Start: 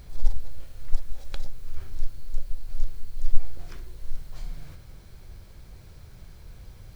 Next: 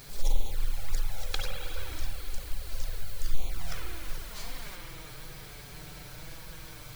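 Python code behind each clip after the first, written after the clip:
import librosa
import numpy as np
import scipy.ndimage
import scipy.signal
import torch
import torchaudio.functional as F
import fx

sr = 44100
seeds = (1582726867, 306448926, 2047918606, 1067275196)

y = fx.rev_spring(x, sr, rt60_s=3.2, pass_ms=(46, 52), chirp_ms=60, drr_db=-3.0)
y = fx.env_flanger(y, sr, rest_ms=8.0, full_db=-10.0)
y = fx.tilt_eq(y, sr, slope=2.5)
y = y * 10.0 ** (7.5 / 20.0)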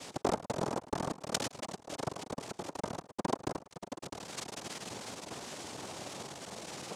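y = fx.halfwave_hold(x, sr)
y = y + 10.0 ** (-16.0 / 20.0) * np.pad(y, (int(108 * sr / 1000.0), 0))[:len(y)]
y = fx.noise_vocoder(y, sr, seeds[0], bands=2)
y = y * 10.0 ** (-2.0 / 20.0)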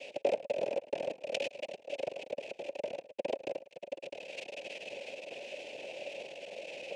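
y = fx.double_bandpass(x, sr, hz=1200.0, octaves=2.2)
y = y * 10.0 ** (10.5 / 20.0)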